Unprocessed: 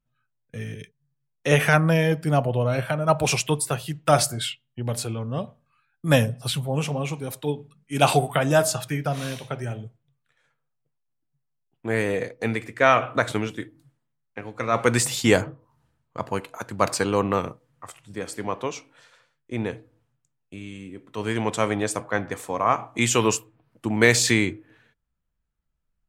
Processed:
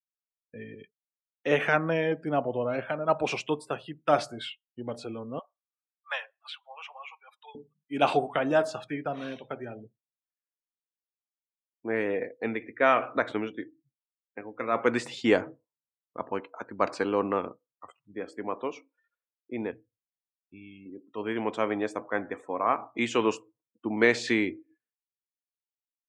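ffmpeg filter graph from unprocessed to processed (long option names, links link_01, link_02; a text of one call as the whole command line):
ffmpeg -i in.wav -filter_complex "[0:a]asettb=1/sr,asplit=3[link_01][link_02][link_03];[link_01]atrim=end=5.394[link_04];[link_02]atrim=start=5.39:end=7.55,asetpts=PTS-STARTPTS,afade=type=in:duration=0.004:curve=qsin,afade=type=out:start_time=2.156:duration=0.004:curve=qsin,highpass=frequency=930:width=0.5412,highpass=frequency=930:width=1.3066,highshelf=frequency=5500:gain=-10[link_05];[link_03]atrim=start=7.546[link_06];[link_04][link_05]acrossfade=duration=0.004:curve1=hsin:curve2=qsin[link_07];[link_07][link_06]acrossfade=duration=0.004:curve1=qsin:curve2=hsin,asettb=1/sr,asplit=3[link_08][link_09][link_10];[link_08]atrim=end=19.714[link_11];[link_09]atrim=start=19.71:end=20.86,asetpts=PTS-STARTPTS,afade=type=in:duration=0.004:curve=qsin,afade=type=out:start_time=1.146:duration=0.004:curve=qsin,equalizer=frequency=610:width=0.31:gain=-15,acontrast=52[link_12];[link_10]atrim=start=20.856[link_13];[link_11][link_12]acrossfade=duration=0.004:curve1=hsin:curve2=qsin[link_14];[link_14][link_13]acrossfade=duration=0.004:curve1=qsin:curve2=hsin,afftdn=noise_reduction=34:noise_floor=-42,lowpass=3200,lowshelf=frequency=190:width_type=q:width=1.5:gain=-10,volume=-5dB" out.wav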